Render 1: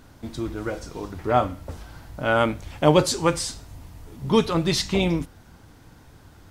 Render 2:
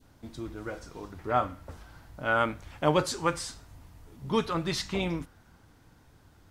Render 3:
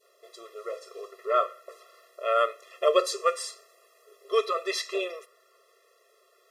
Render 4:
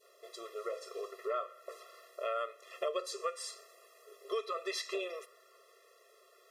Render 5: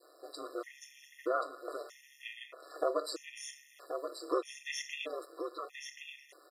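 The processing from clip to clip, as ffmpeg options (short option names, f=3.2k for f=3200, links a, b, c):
-af "adynamicequalizer=threshold=0.0141:dfrequency=1400:dqfactor=1.1:tfrequency=1400:tqfactor=1.1:attack=5:release=100:ratio=0.375:range=3.5:mode=boostabove:tftype=bell,volume=-9dB"
-af "afftfilt=real='re*eq(mod(floor(b*sr/1024/350),2),1)':imag='im*eq(mod(floor(b*sr/1024/350),2),1)':win_size=1024:overlap=0.75,volume=5dB"
-af "acompressor=threshold=-35dB:ratio=4"
-af "aecho=1:1:1080:0.447,aeval=exprs='val(0)*sin(2*PI*70*n/s)':c=same,afftfilt=real='re*gt(sin(2*PI*0.79*pts/sr)*(1-2*mod(floor(b*sr/1024/1800),2)),0)':imag='im*gt(sin(2*PI*0.79*pts/sr)*(1-2*mod(floor(b*sr/1024/1800),2)),0)':win_size=1024:overlap=0.75,volume=6dB"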